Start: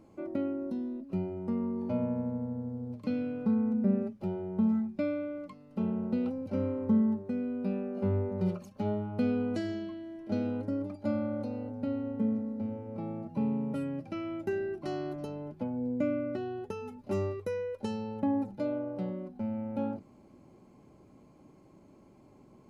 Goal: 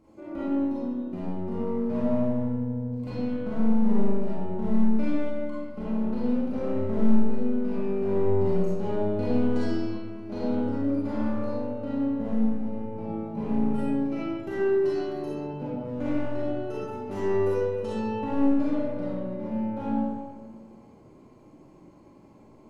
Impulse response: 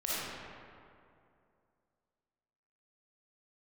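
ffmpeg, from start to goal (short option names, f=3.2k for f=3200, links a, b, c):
-filter_complex "[0:a]acontrast=26,aeval=exprs='clip(val(0),-1,0.0562)':c=same[a];[1:a]atrim=start_sample=2205,asetrate=66150,aresample=44100[b];[a][b]afir=irnorm=-1:irlink=0,volume=-3.5dB"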